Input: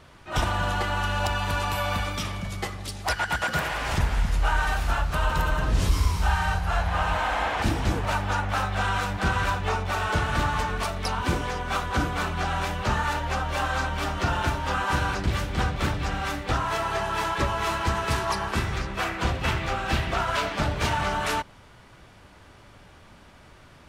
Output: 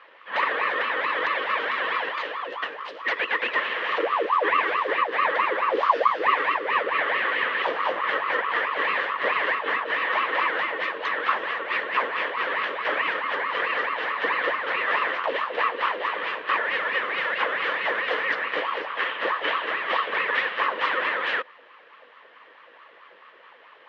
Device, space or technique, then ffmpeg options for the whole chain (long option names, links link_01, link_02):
voice changer toy: -af "aeval=exprs='val(0)*sin(2*PI*790*n/s+790*0.55/4.6*sin(2*PI*4.6*n/s))':channel_layout=same,highpass=490,equalizer=frequency=500:width_type=q:width=4:gain=7,equalizer=frequency=750:width_type=q:width=4:gain=-5,equalizer=frequency=1100:width_type=q:width=4:gain=6,equalizer=frequency=1800:width_type=q:width=4:gain=10,equalizer=frequency=3000:width_type=q:width=4:gain=6,lowpass=frequency=3500:width=0.5412,lowpass=frequency=3500:width=1.3066"